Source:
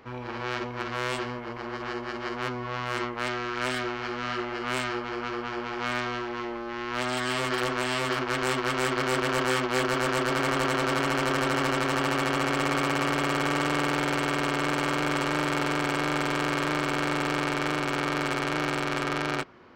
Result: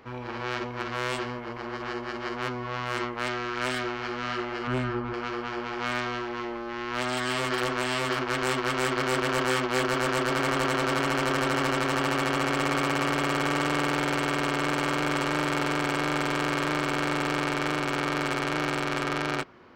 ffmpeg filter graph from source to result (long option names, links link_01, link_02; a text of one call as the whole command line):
ffmpeg -i in.wav -filter_complex "[0:a]asettb=1/sr,asplit=3[link_01][link_02][link_03];[link_01]atrim=end=4.674[link_04];[link_02]atrim=start=4.67:end=5.14,asetpts=PTS-STARTPTS,afade=type=in:duration=0.004:curve=qsin,afade=type=out:start_time=0.466:duration=0.004:curve=qsin,lowpass=frequency=1200:poles=1,lowshelf=frequency=220:gain=10,aecho=1:1:7.5:0.36,atrim=end_sample=20727[link_05];[link_03]atrim=start=5.136[link_06];[link_04][link_05]acrossfade=duration=0.004:curve1=hsin:curve2=qsin[link_07];[link_07][link_06]acrossfade=duration=0.004:curve1=qsin:curve2=hsin" out.wav